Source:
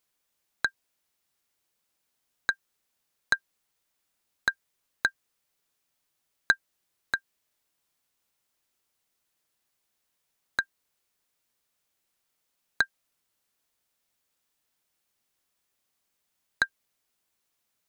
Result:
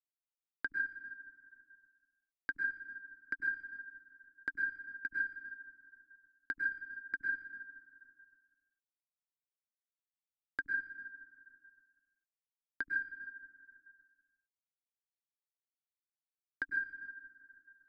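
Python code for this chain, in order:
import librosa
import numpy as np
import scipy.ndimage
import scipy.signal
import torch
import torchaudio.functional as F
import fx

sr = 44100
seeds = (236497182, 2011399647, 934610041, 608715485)

y = fx.fuzz(x, sr, gain_db=32.0, gate_db=-41.0)
y = fx.transient(y, sr, attack_db=-10, sustain_db=10)
y = fx.tilt_eq(y, sr, slope=-3.0)
y = fx.notch(y, sr, hz=990.0, q=5.8)
y = fx.rev_plate(y, sr, seeds[0], rt60_s=1.3, hf_ratio=0.65, predelay_ms=90, drr_db=10.0)
y = fx.over_compress(y, sr, threshold_db=-32.0, ratio=-0.5)
y = fx.transient(y, sr, attack_db=3, sustain_db=-6)
y = fx.double_bandpass(y, sr, hz=680.0, octaves=2.5)
y = fx.band_squash(y, sr, depth_pct=70)
y = y * librosa.db_to_amplitude(5.0)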